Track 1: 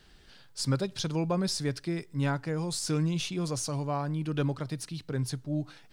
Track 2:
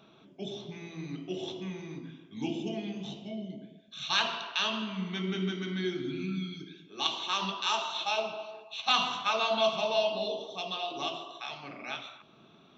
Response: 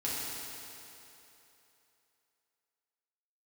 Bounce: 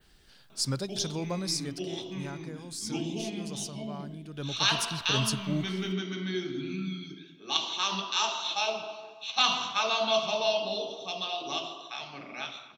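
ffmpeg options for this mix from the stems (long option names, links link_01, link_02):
-filter_complex "[0:a]highshelf=frequency=7000:gain=9,volume=7.5dB,afade=type=out:start_time=1.25:duration=0.61:silence=0.421697,afade=type=in:start_time=4.33:duration=0.6:silence=0.266073[link_01];[1:a]adelay=500,volume=-0.5dB,asplit=2[link_02][link_03];[link_03]volume=-23dB[link_04];[2:a]atrim=start_sample=2205[link_05];[link_04][link_05]afir=irnorm=-1:irlink=0[link_06];[link_01][link_02][link_06]amix=inputs=3:normalize=0,adynamicequalizer=threshold=0.00355:dfrequency=5600:dqfactor=1.3:tfrequency=5600:tqfactor=1.3:attack=5:release=100:ratio=0.375:range=3.5:mode=boostabove:tftype=bell"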